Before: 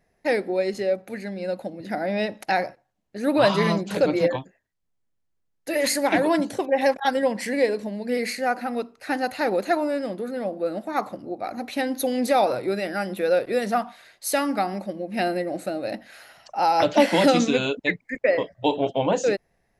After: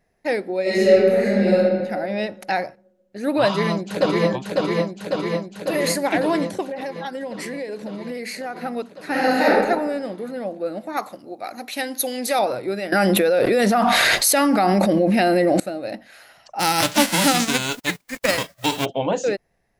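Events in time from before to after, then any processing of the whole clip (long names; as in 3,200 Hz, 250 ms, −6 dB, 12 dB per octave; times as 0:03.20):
0:00.62–0:01.54: thrown reverb, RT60 1.7 s, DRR −11.5 dB
0:03.46–0:04.29: delay throw 550 ms, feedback 75%, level −2 dB
0:06.63–0:08.58: downward compressor, threshold −26 dBFS
0:09.11–0:09.51: thrown reverb, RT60 1.1 s, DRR −8.5 dB
0:10.97–0:12.39: spectral tilt +2.5 dB per octave
0:12.92–0:15.60: envelope flattener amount 100%
0:16.59–0:18.84: spectral envelope flattened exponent 0.3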